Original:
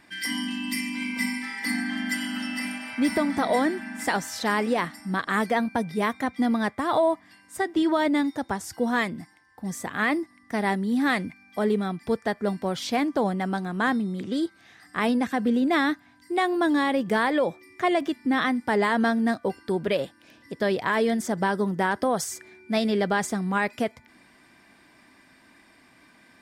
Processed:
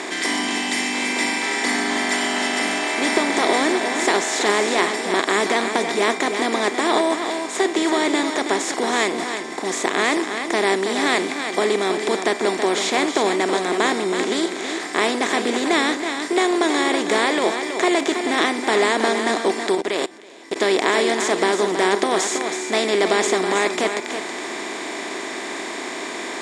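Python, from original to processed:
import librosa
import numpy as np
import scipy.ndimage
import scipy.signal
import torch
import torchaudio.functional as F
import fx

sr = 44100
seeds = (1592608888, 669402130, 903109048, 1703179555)

y = fx.bin_compress(x, sr, power=0.4)
y = fx.cabinet(y, sr, low_hz=340.0, low_slope=12, high_hz=9800.0, hz=(380.0, 540.0, 1500.0, 2300.0, 3700.0, 7000.0), db=(9, -6, -4, 4, 6, 9))
y = y + 10.0 ** (-7.5 / 20.0) * np.pad(y, (int(324 * sr / 1000.0), 0))[:len(y)]
y = fx.level_steps(y, sr, step_db=21, at=(19.75, 20.56))
y = y * librosa.db_to_amplitude(-1.0)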